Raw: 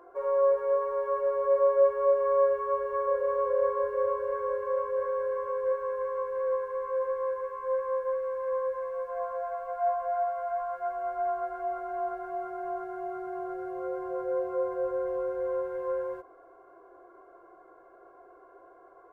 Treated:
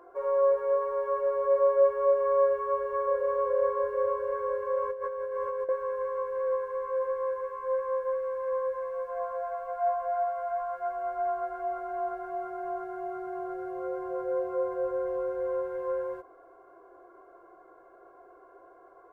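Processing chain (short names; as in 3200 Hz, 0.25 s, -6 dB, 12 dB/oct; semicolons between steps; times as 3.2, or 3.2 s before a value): 4.82–5.69 negative-ratio compressor -32 dBFS, ratio -0.5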